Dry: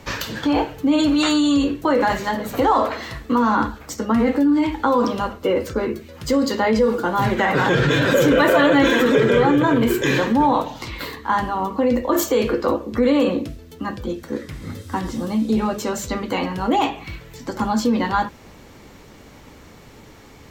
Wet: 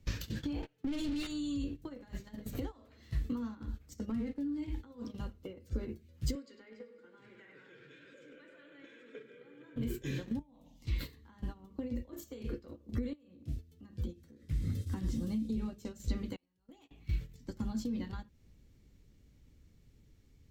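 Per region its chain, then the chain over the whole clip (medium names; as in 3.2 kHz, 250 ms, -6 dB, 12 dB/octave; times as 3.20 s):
0.62–1.27 s: gate -27 dBFS, range -19 dB + high-pass 110 Hz 24 dB/octave + overdrive pedal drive 25 dB, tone 2.7 kHz, clips at -8.5 dBFS
4.10–4.58 s: high-pass 110 Hz 6 dB/octave + treble shelf 10 kHz -6.5 dB + sliding maximum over 3 samples
6.35–9.76 s: cabinet simulation 370–7400 Hz, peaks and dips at 450 Hz +5 dB, 730 Hz -9 dB, 1.5 kHz +7 dB, 2.3 kHz +8 dB, 4.1 kHz -3 dB, 6 kHz -7 dB + filtered feedback delay 100 ms, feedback 66%, low-pass 4.4 kHz, level -7 dB
10.39–10.85 s: peaking EQ 4.1 kHz -6.5 dB 0.47 oct + static phaser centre 390 Hz, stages 6 + compression 10:1, threshold -25 dBFS
13.13–14.43 s: high-pass 60 Hz 24 dB/octave + compression 8:1, threshold -28 dBFS
16.36–16.91 s: gate -19 dBFS, range -27 dB + tone controls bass -9 dB, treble +4 dB + compression, threshold -26 dBFS
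whole clip: compression 5:1, threshold -26 dBFS; amplifier tone stack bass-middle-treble 10-0-1; gate -48 dBFS, range -15 dB; trim +10.5 dB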